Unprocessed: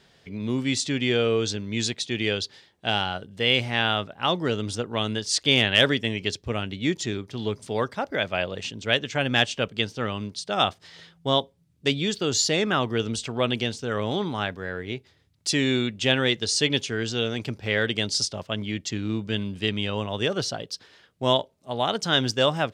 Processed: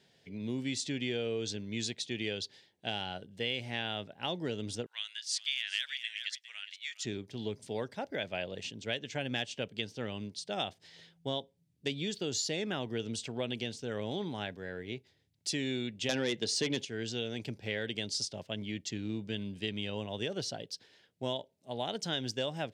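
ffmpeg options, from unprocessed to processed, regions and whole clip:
-filter_complex "[0:a]asettb=1/sr,asplit=3[a][b][c];[a]atrim=end=4.864[d];[b]atrim=start=4.86:end=7.05,asetpts=PTS-STARTPTS,afade=t=in:d=0.004:c=qsin,afade=t=out:st=2.186:d=0.004:c=qsin,highpass=f=1.5k:w=0.5412,highpass=f=1.5k:w=1.3066,aecho=1:1:409:0.178,atrim=end_sample=96579[e];[c]atrim=start=7.046[f];[d][e]acrossfade=d=0.004:c1=hsin:c2=qsin[g];[g][f]acrossfade=d=0.004:c1=qsin:c2=hsin,asettb=1/sr,asplit=3[h][i][j];[h]atrim=end=16.094[k];[i]atrim=start=16.09:end=16.85,asetpts=PTS-STARTPTS,afade=t=in:d=0.004:c=qsin,afade=t=out:st=0.756:d=0.004:c=qsin,highpass=130,highshelf=f=3.9k:g=-8.5,aeval=exprs='0.473*sin(PI/2*2.51*val(0)/0.473)':c=same[l];[j]atrim=start=16.846[m];[k][l]acrossfade=d=0.004:c1=hsin:c2=qsin[n];[n][m]acrossfade=d=0.004:c1=qsin:c2=hsin,highpass=97,equalizer=f=1.2k:t=o:w=0.52:g=-12,acompressor=threshold=-23dB:ratio=4,volume=-7.5dB"

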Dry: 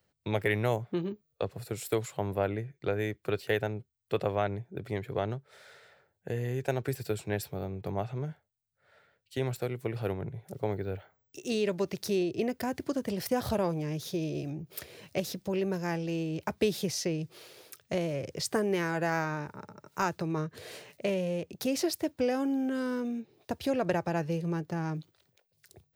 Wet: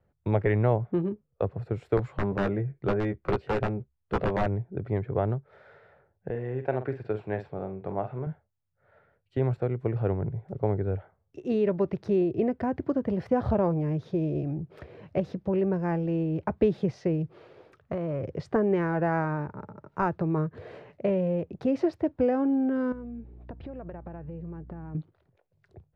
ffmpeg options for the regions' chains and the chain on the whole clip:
-filter_complex "[0:a]asettb=1/sr,asplit=3[a][b][c];[a]atrim=end=1.974[d];[b]atrim=start=1.97:end=4.46,asetpts=PTS-STARTPTS,afade=t=in:d=0.004:c=qsin,afade=t=out:st=2.486:d=0.004:c=qsin,aeval=exprs='(mod(11.2*val(0)+1,2)-1)/11.2':c=same,asplit=2[e][f];[f]adelay=15,volume=-5.5dB[g];[e][g]amix=inputs=2:normalize=0,atrim=end_sample=109809[h];[c]atrim=start=4.456[i];[d][h]acrossfade=d=0.004:c1=hsin:c2=qsin[j];[j][i]acrossfade=d=0.004:c1=qsin:c2=hsin,asettb=1/sr,asplit=3[k][l][m];[k]atrim=end=6.304[n];[l]atrim=start=6.3:end=8.27,asetpts=PTS-STARTPTS,afade=t=in:d=0.004:c=qsin,afade=t=out:st=1.966:d=0.004:c=qsin,lowpass=3k,aemphasis=mode=production:type=bsi,asplit=2[o][p];[p]adelay=47,volume=-10dB[q];[o][q]amix=inputs=2:normalize=0,atrim=end_sample=86877[r];[m]atrim=start=8.266[s];[n][r]acrossfade=d=0.004:c1=hsin:c2=qsin[t];[t][s]acrossfade=d=0.004:c1=qsin:c2=hsin,asettb=1/sr,asplit=3[u][v][w];[u]atrim=end=17.824[x];[v]atrim=start=17.82:end=18.22,asetpts=PTS-STARTPTS,afade=t=in:d=0.004:c=qsin,afade=t=out:st=0.396:d=0.004:c=qsin,equalizer=f=1.2k:t=o:w=0.6:g=8.5,acompressor=threshold=-31dB:ratio=4:attack=3.2:release=140:knee=1:detection=peak[y];[w]atrim=start=18.216[z];[x][y]acrossfade=d=0.004:c1=hsin:c2=qsin[aa];[aa][z]acrossfade=d=0.004:c1=qsin:c2=hsin,asettb=1/sr,asplit=3[ab][ac][ad];[ab]atrim=end=22.924[ae];[ac]atrim=start=22.92:end=24.95,asetpts=PTS-STARTPTS,afade=t=in:d=0.004:c=qsin,afade=t=out:st=2.026:d=0.004:c=qsin,lowpass=3.5k,acompressor=threshold=-43dB:ratio=5:attack=3.2:release=140:knee=1:detection=peak,aeval=exprs='val(0)+0.00158*(sin(2*PI*60*n/s)+sin(2*PI*2*60*n/s)/2+sin(2*PI*3*60*n/s)/3+sin(2*PI*4*60*n/s)/4+sin(2*PI*5*60*n/s)/5)':c=same[af];[ad]atrim=start=24.946[ag];[ae][af]acrossfade=d=0.004:c1=hsin:c2=qsin[ah];[ah][ag]acrossfade=d=0.004:c1=qsin:c2=hsin,lowpass=1.3k,lowshelf=f=75:g=12,volume=4dB"

